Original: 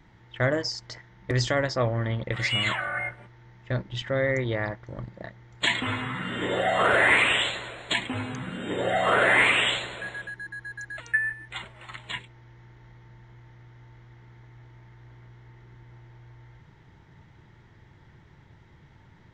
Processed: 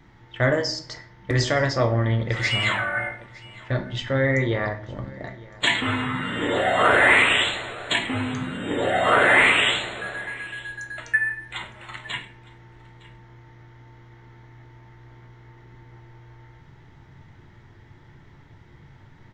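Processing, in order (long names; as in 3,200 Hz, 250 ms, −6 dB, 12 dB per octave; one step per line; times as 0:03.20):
single-tap delay 910 ms −22 dB
rectangular room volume 54 cubic metres, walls mixed, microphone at 0.37 metres
level +2.5 dB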